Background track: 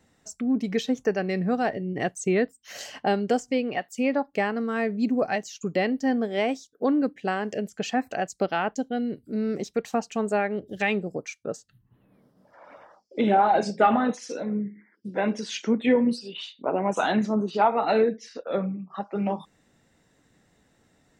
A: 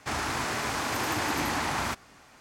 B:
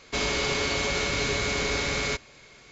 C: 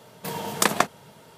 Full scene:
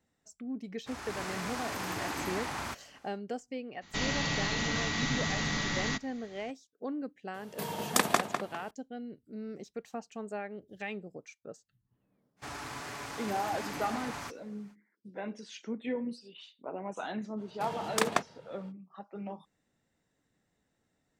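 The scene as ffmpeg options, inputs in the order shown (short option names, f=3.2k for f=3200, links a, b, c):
-filter_complex "[1:a]asplit=2[a][b];[3:a]asplit=2[c][d];[0:a]volume=-14dB[e];[a]dynaudnorm=f=120:g=5:m=7.5dB[f];[2:a]afreqshift=-270[g];[c]asplit=2[h][i];[i]adelay=201,lowpass=f=4k:p=1,volume=-6.5dB,asplit=2[j][k];[k]adelay=201,lowpass=f=4k:p=1,volume=0.34,asplit=2[l][m];[m]adelay=201,lowpass=f=4k:p=1,volume=0.34,asplit=2[n][o];[o]adelay=201,lowpass=f=4k:p=1,volume=0.34[p];[h][j][l][n][p]amix=inputs=5:normalize=0[q];[b]aecho=1:1:7:0.4[r];[d]adynamicsmooth=sensitivity=6.5:basefreq=4.7k[s];[f]atrim=end=2.4,asetpts=PTS-STARTPTS,volume=-15dB,afade=t=in:d=0.1,afade=t=out:st=2.3:d=0.1,adelay=800[t];[g]atrim=end=2.71,asetpts=PTS-STARTPTS,volume=-5dB,afade=t=in:d=0.02,afade=t=out:st=2.69:d=0.02,adelay=168021S[u];[q]atrim=end=1.37,asetpts=PTS-STARTPTS,volume=-5.5dB,afade=t=in:d=0.004:c=hsin,afade=t=out:st=1.366:d=0.004:c=hsin,adelay=7340[v];[r]atrim=end=2.4,asetpts=PTS-STARTPTS,volume=-11.5dB,afade=t=in:d=0.05,afade=t=out:st=2.35:d=0.05,adelay=545076S[w];[s]atrim=end=1.37,asetpts=PTS-STARTPTS,volume=-7.5dB,afade=t=in:d=0.05,afade=t=out:st=1.32:d=0.05,adelay=17360[x];[e][t][u][v][w][x]amix=inputs=6:normalize=0"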